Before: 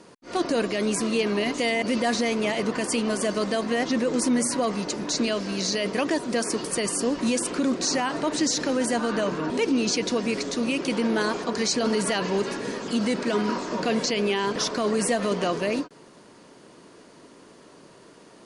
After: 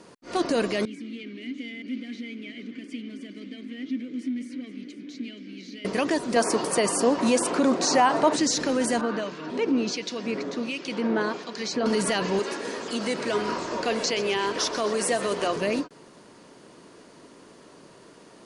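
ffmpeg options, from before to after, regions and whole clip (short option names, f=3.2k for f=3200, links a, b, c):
-filter_complex "[0:a]asettb=1/sr,asplit=3[a][b][c];[a]atrim=end=0.854[d];[b]atrim=start=0.85:end=5.85,asetpts=PTS-STARTPTS,afade=t=in:d=0.004:c=qsin,afade=t=out:st=4.996:d=0.004:c=qsin,aecho=1:1:475:0.188,atrim=end_sample=220500,volume=21dB,asoftclip=hard,volume=-21dB,asplit=3[e][f][g];[e]bandpass=f=270:t=q:w=8,volume=0dB[h];[f]bandpass=f=2.29k:t=q:w=8,volume=-6dB[i];[g]bandpass=f=3.01k:t=q:w=8,volume=-9dB[j];[h][i][j]amix=inputs=3:normalize=0[k];[c]atrim=start=5.846[l];[d][k]acrossfade=d=0.004:c1=hsin:c2=qsin[m];[m][l]acrossfade=d=0.004:c1=qsin:c2=hsin,asettb=1/sr,asplit=3[n][o][p];[n]atrim=end=6.364[q];[o]atrim=start=6.36:end=8.36,asetpts=PTS-STARTPTS,afade=t=in:d=0.004:c=qsin,afade=t=out:st=1.996:d=0.004:c=qsin,highpass=84,equalizer=f=800:t=o:w=1.5:g=9.5[r];[p]atrim=start=8.356[s];[q][r]acrossfade=d=0.004:c1=hsin:c2=qsin[t];[t][s]acrossfade=d=0.004:c1=qsin:c2=hsin,asettb=1/sr,asplit=3[u][v][w];[u]atrim=end=9.014[x];[v]atrim=start=9.01:end=11.86,asetpts=PTS-STARTPTS,afade=t=in:d=0.004:c=qsin,afade=t=out:st=2.846:d=0.004:c=qsin,acrossover=split=2100[y][z];[y]aeval=exprs='val(0)*(1-0.7/2+0.7/2*cos(2*PI*1.4*n/s))':c=same[aa];[z]aeval=exprs='val(0)*(1-0.7/2-0.7/2*cos(2*PI*1.4*n/s))':c=same[ab];[aa][ab]amix=inputs=2:normalize=0,highpass=130,lowpass=5.3k[ac];[w]atrim=start=11.856[ad];[x][ac]acrossfade=d=0.004:c1=hsin:c2=qsin[ae];[ae][ad]acrossfade=d=0.004:c1=qsin:c2=hsin,asettb=1/sr,asplit=3[af][ag][ah];[af]atrim=end=12.394[ai];[ag]atrim=start=12.39:end=15.56,asetpts=PTS-STARTPTS,afade=t=in:d=0.004:c=qsin,afade=t=out:st=3.166:d=0.004:c=qsin,highpass=320,asplit=7[aj][ak][al][am][an][ao][ap];[ak]adelay=127,afreqshift=-41,volume=-14dB[aq];[al]adelay=254,afreqshift=-82,volume=-18.4dB[ar];[am]adelay=381,afreqshift=-123,volume=-22.9dB[as];[an]adelay=508,afreqshift=-164,volume=-27.3dB[at];[ao]adelay=635,afreqshift=-205,volume=-31.7dB[au];[ap]adelay=762,afreqshift=-246,volume=-36.2dB[av];[aj][aq][ar][as][at][au][av]amix=inputs=7:normalize=0,atrim=end_sample=139797[aw];[ah]atrim=start=15.556[ax];[ai][aw]acrossfade=d=0.004:c1=hsin:c2=qsin[ay];[ay][ax]acrossfade=d=0.004:c1=qsin:c2=hsin"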